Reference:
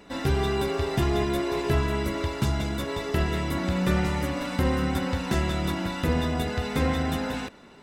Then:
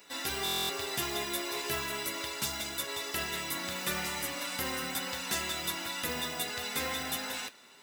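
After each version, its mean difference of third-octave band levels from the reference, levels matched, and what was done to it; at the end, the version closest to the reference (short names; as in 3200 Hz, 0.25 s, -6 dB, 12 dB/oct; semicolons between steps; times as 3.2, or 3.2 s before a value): 9.5 dB: modulation noise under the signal 33 dB; tilt +4.5 dB/oct; flange 0.35 Hz, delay 1.8 ms, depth 9.5 ms, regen -64%; stuck buffer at 0.44, samples 1024, times 10; gain -2.5 dB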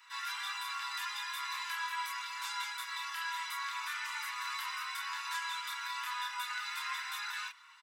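21.5 dB: steep high-pass 940 Hz 96 dB/oct; comb 7.3 ms, depth 50%; limiter -26 dBFS, peak gain reduction 5.5 dB; chorus voices 6, 0.32 Hz, delay 28 ms, depth 2.8 ms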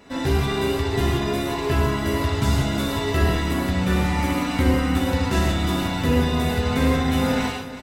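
3.5 dB: vocal rider within 4 dB 0.5 s; reverb removal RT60 0.54 s; on a send: echo 0.365 s -13 dB; on the sum: non-linear reverb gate 0.19 s flat, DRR -5 dB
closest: third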